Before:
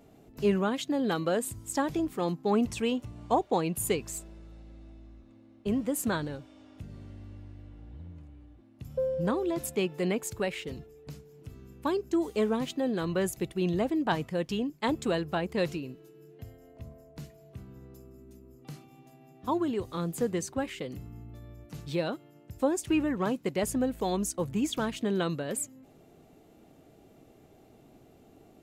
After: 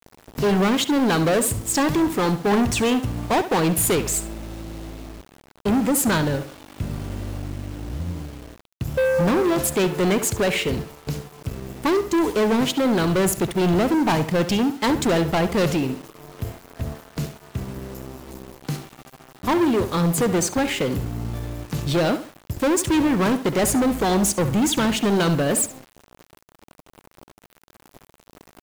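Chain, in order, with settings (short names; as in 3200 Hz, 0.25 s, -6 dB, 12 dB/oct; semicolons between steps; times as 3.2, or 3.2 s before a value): sample leveller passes 5; tape echo 69 ms, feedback 38%, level -10 dB, low-pass 4200 Hz; bit-crush 7-bit; gain -2 dB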